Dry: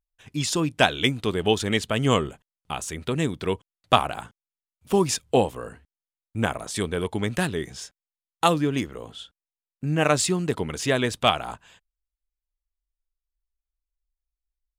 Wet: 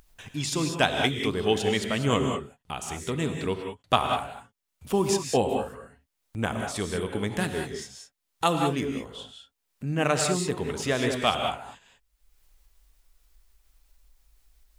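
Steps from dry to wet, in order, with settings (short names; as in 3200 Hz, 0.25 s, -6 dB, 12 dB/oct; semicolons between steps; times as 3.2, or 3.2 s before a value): upward compressor, threshold -32 dBFS; non-linear reverb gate 0.22 s rising, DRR 3.5 dB; gain -4 dB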